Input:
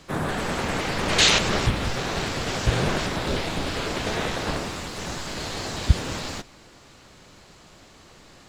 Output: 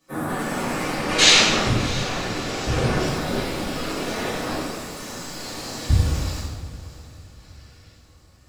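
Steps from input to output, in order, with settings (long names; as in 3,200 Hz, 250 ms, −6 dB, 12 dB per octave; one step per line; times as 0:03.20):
spectral dynamics exaggerated over time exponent 1.5
0:00.95–0:03.00: high-shelf EQ 8,000 Hz −8 dB
0:07.38–0:07.91: gain on a spectral selection 1,300–5,900 Hz +10 dB
high-shelf EQ 3,600 Hz +9 dB
feedback delay with all-pass diffusion 664 ms, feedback 44%, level −16 dB
convolution reverb RT60 1.2 s, pre-delay 3 ms, DRR −10 dB
level −6 dB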